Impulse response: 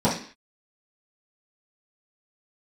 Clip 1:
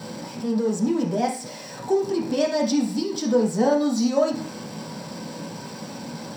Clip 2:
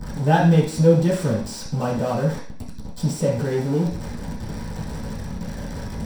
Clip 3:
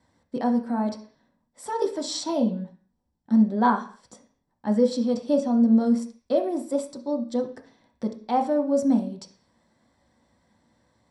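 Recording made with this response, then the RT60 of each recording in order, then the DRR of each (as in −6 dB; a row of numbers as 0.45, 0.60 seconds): 2; 0.45, 0.45, 0.45 seconds; −4.5, −11.5, 2.5 decibels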